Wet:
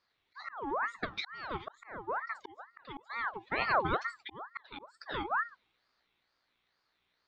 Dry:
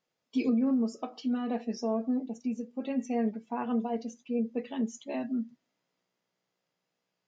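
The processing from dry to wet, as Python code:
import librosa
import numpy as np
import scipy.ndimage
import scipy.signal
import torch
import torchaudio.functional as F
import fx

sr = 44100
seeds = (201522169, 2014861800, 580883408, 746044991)

y = fx.auto_swell(x, sr, attack_ms=650.0)
y = fx.lowpass_res(y, sr, hz=3000.0, q=5.4)
y = fx.ring_lfo(y, sr, carrier_hz=1100.0, swing_pct=50, hz=2.2)
y = F.gain(torch.from_numpy(y), 3.5).numpy()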